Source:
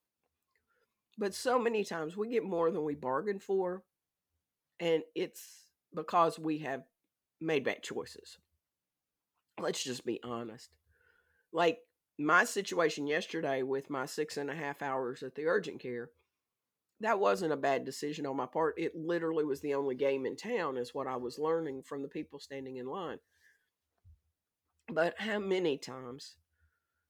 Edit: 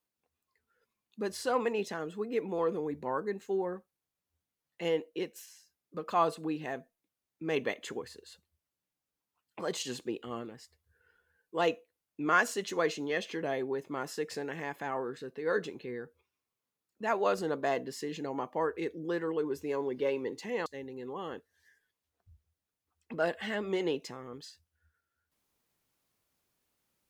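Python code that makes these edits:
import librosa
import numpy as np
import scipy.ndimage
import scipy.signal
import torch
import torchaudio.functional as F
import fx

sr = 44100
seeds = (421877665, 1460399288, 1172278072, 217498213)

y = fx.edit(x, sr, fx.cut(start_s=20.66, length_s=1.78), tone=tone)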